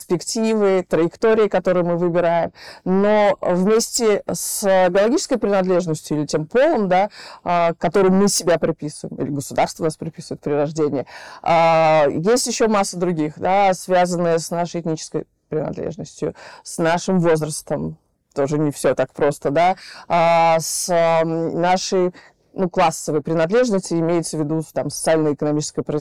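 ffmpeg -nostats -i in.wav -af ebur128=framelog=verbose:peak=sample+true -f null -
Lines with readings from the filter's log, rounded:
Integrated loudness:
  I:         -18.8 LUFS
  Threshold: -29.0 LUFS
Loudness range:
  LRA:         4.7 LU
  Threshold: -39.0 LUFS
  LRA low:   -22.2 LUFS
  LRA high:  -17.6 LUFS
Sample peak:
  Peak:      -11.0 dBFS
True peak:
  Peak:      -10.0 dBFS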